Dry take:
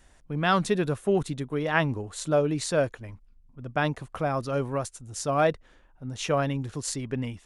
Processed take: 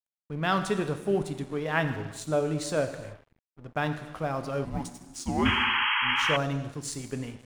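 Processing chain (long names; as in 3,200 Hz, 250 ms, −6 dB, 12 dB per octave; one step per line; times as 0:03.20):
reverb whose tail is shaped and stops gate 450 ms falling, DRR 7 dB
dead-zone distortion −45.5 dBFS
0:04.65–0:06.21: frequency shifter −380 Hz
0:05.45–0:06.37: sound drawn into the spectrogram noise 810–3,300 Hz −23 dBFS
level −3 dB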